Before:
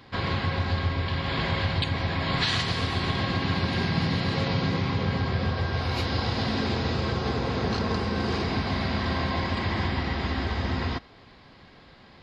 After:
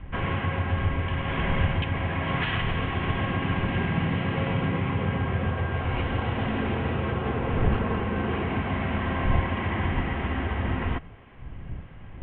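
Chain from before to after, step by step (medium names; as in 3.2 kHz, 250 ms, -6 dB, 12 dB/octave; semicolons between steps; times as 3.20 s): wind noise 92 Hz -34 dBFS; steep low-pass 3.1 kHz 72 dB/octave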